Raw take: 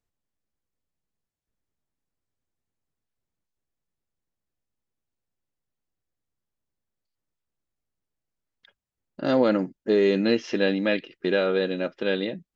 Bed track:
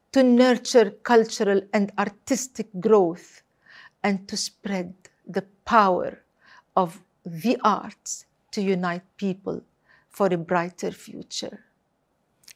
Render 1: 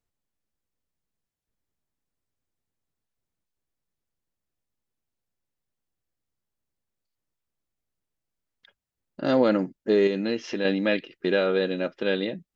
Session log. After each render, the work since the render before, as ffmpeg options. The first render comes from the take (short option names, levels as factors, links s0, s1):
-filter_complex "[0:a]asettb=1/sr,asplit=3[s0][s1][s2];[s0]atrim=end=10.074[s3];[s1]atrim=start=10.07:end=10.65,asetpts=PTS-STARTPTS,afade=t=in:d=0.004:c=qsin,afade=t=out:st=0.576:d=0.004:c=qsin,acompressor=threshold=0.0282:ratio=1.5:attack=3.2:release=140:knee=1:detection=peak[s4];[s2]atrim=start=10.646[s5];[s3][s4]acrossfade=d=0.004:c1=hsin:c2=qsin[s6];[s6][s5]acrossfade=d=0.004:c1=qsin:c2=hsin"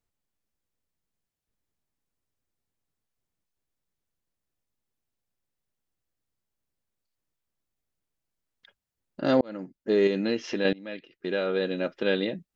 -filter_complex "[0:a]asplit=3[s0][s1][s2];[s0]atrim=end=9.41,asetpts=PTS-STARTPTS,afade=t=out:st=9.406:d=0.004:c=hsin[s3];[s1]atrim=start=9.41:end=10.73,asetpts=PTS-STARTPTS,afade=t=in:d=0.7,afade=t=out:st=1.316:d=0.004:c=hsin:silence=0.0668344[s4];[s2]atrim=start=10.73,asetpts=PTS-STARTPTS,afade=t=in:d=1.25:silence=0.0668344[s5];[s3][s4][s5]concat=n=3:v=0:a=1"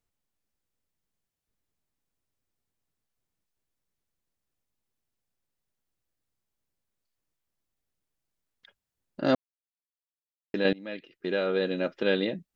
-filter_complex "[0:a]asplit=3[s0][s1][s2];[s0]atrim=end=9.35,asetpts=PTS-STARTPTS,afade=t=out:st=9.346:d=0.004:c=hsin[s3];[s1]atrim=start=9.35:end=10.54,asetpts=PTS-STARTPTS,volume=0[s4];[s2]atrim=start=10.54,asetpts=PTS-STARTPTS,afade=t=in:d=0.004:c=hsin[s5];[s3][s4][s5]concat=n=3:v=0:a=1"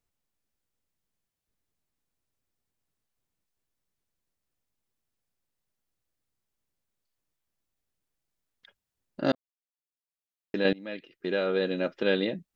-filter_complex "[0:a]asplit=2[s0][s1];[s0]atrim=end=9.32,asetpts=PTS-STARTPTS,afade=t=out:st=9.316:d=0.004:c=hsin[s2];[s1]atrim=start=9.32,asetpts=PTS-STARTPTS,afade=t=in:d=1.27[s3];[s2][s3]concat=n=2:v=0:a=1"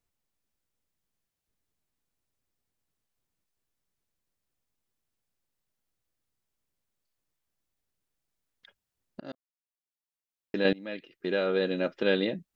-filter_complex "[0:a]asplit=2[s0][s1];[s0]atrim=end=9.2,asetpts=PTS-STARTPTS,afade=t=out:st=9.196:d=0.004:c=hsin:silence=0.0841395[s2];[s1]atrim=start=9.2,asetpts=PTS-STARTPTS,afade=t=in:d=1.46:silence=0.0841395[s3];[s2][s3]concat=n=2:v=0:a=1"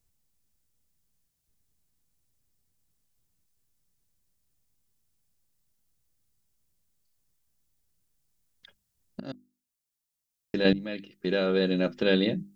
-af "bass=f=250:g=11,treble=f=4000:g=9,bandreject=f=50:t=h:w=6,bandreject=f=100:t=h:w=6,bandreject=f=150:t=h:w=6,bandreject=f=200:t=h:w=6,bandreject=f=250:t=h:w=6,bandreject=f=300:t=h:w=6,bandreject=f=350:t=h:w=6"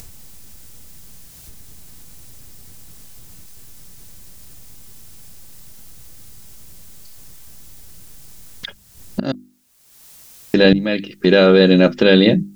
-filter_complex "[0:a]asplit=2[s0][s1];[s1]acompressor=mode=upward:threshold=0.0316:ratio=2.5,volume=1.33[s2];[s0][s2]amix=inputs=2:normalize=0,alimiter=level_in=2.51:limit=0.891:release=50:level=0:latency=1"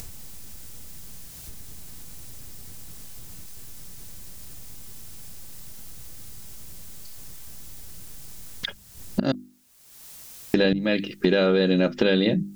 -af "acompressor=threshold=0.141:ratio=6"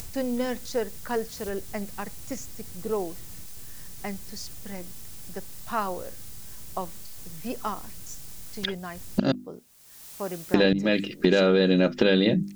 -filter_complex "[1:a]volume=0.266[s0];[0:a][s0]amix=inputs=2:normalize=0"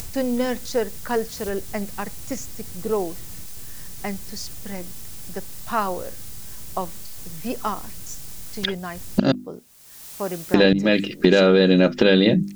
-af "volume=1.78,alimiter=limit=0.794:level=0:latency=1"